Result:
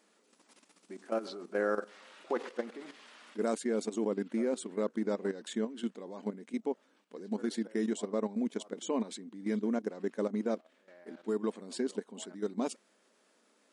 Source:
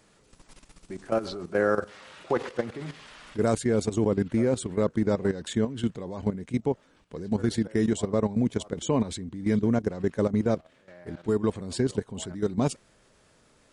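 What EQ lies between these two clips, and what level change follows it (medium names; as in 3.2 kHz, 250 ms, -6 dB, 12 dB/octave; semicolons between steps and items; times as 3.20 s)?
brick-wall FIR high-pass 190 Hz; -7.0 dB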